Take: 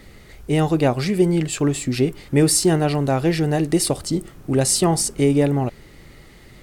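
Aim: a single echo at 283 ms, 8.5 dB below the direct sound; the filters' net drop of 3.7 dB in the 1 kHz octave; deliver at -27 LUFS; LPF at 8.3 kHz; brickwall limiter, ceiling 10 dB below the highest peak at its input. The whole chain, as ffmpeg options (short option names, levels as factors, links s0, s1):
-af "lowpass=8300,equalizer=f=1000:t=o:g=-5.5,alimiter=limit=0.168:level=0:latency=1,aecho=1:1:283:0.376,volume=0.708"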